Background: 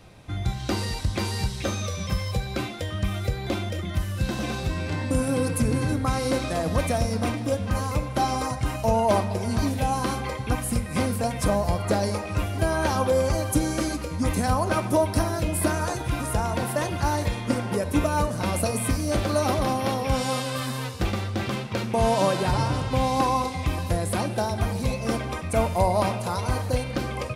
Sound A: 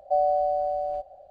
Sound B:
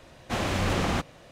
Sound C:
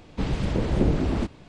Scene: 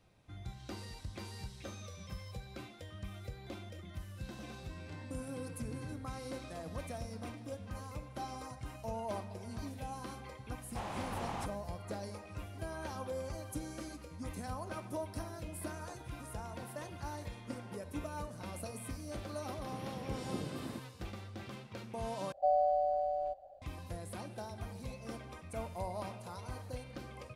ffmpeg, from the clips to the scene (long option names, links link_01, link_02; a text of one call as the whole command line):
ffmpeg -i bed.wav -i cue0.wav -i cue1.wav -i cue2.wav -filter_complex "[0:a]volume=-18.5dB[link_01];[2:a]equalizer=frequency=870:width=1.8:gain=12[link_02];[3:a]highpass=frequency=100:width=0.5412,highpass=frequency=100:width=1.3066[link_03];[link_01]asplit=2[link_04][link_05];[link_04]atrim=end=22.324[link_06];[1:a]atrim=end=1.3,asetpts=PTS-STARTPTS,volume=-6.5dB[link_07];[link_05]atrim=start=23.616[link_08];[link_02]atrim=end=1.31,asetpts=PTS-STARTPTS,volume=-18dB,afade=type=in:duration=0.004:curve=hsin,afade=type=out:start_time=1.306:duration=0.004:curve=hsin,adelay=10450[link_09];[link_03]atrim=end=1.48,asetpts=PTS-STARTPTS,volume=-17dB,afade=type=in:duration=0.004:curve=hsin,afade=type=out:start_time=1.476:duration=0.004:curve=hsin,adelay=19530[link_10];[link_06][link_07]acrossfade=duration=0.004:curve1=hsin:curve2=hsin[link_11];[link_11][link_08]acrossfade=duration=0.004:curve1=hsin:curve2=hsin[link_12];[link_12][link_09][link_10]amix=inputs=3:normalize=0" out.wav